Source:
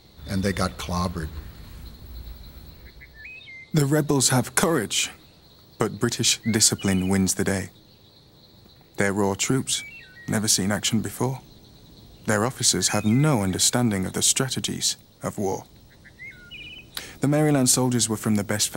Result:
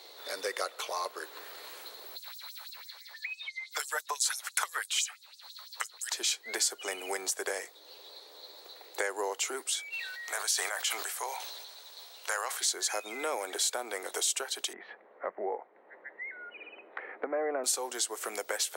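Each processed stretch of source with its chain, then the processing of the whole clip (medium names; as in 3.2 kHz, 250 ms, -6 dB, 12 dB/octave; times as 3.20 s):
2.16–6.14 s: LFO high-pass sine 6 Hz 930–7100 Hz + overload inside the chain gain 3 dB
9.92–12.60 s: high-pass 840 Hz + crackle 510 per s -53 dBFS + decay stretcher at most 52 dB/s
14.73–17.64 s: elliptic low-pass 2 kHz, stop band 80 dB + peaking EQ 190 Hz +14 dB 0.74 oct
whole clip: steep high-pass 420 Hz 36 dB/octave; compression 2:1, threshold -45 dBFS; trim +5 dB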